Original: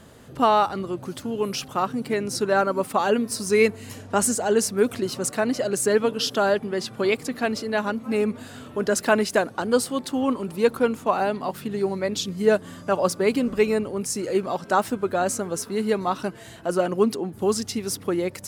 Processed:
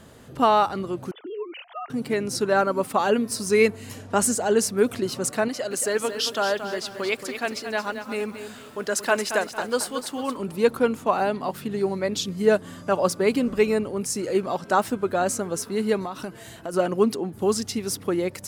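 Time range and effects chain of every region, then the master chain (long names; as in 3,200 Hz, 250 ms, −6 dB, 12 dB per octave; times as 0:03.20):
0:01.11–0:01.90: three sine waves on the formant tracks + downward compressor 3 to 1, threshold −32 dBFS
0:05.48–0:10.37: low-shelf EQ 420 Hz −11 dB + feedback echo at a low word length 226 ms, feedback 35%, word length 8 bits, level −9 dB
0:16.05–0:16.74: high-shelf EQ 11,000 Hz +8 dB + downward compressor 12 to 1, threshold −27 dBFS
whole clip: no processing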